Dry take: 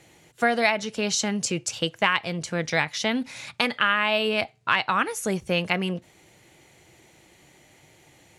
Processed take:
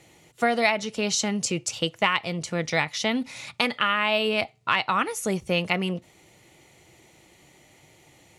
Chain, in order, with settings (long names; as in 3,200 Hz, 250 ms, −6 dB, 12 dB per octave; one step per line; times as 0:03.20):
notch filter 1,600 Hz, Q 7.8